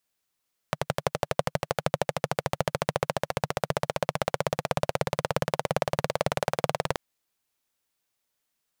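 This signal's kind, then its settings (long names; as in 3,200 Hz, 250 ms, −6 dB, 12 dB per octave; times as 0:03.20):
pulse-train model of a single-cylinder engine, changing speed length 6.23 s, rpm 1,400, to 2,300, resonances 150/550 Hz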